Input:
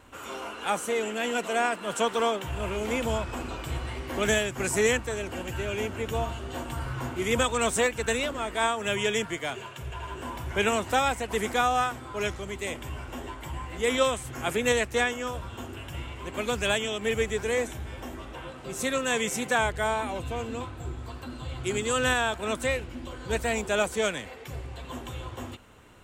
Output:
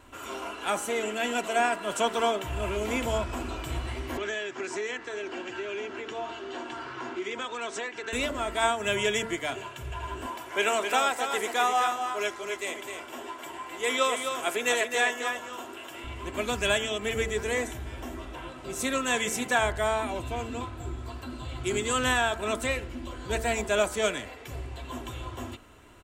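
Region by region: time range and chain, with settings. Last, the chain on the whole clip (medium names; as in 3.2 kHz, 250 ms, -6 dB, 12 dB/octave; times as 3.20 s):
4.17–8.13 s: cabinet simulation 330–6000 Hz, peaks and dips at 380 Hz +5 dB, 590 Hz -5 dB, 1.6 kHz +3 dB + compression 3:1, threshold -32 dBFS
10.26–16.04 s: high-pass 370 Hz + delay 260 ms -6.5 dB
whole clip: comb 3 ms, depth 37%; de-hum 74.61 Hz, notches 28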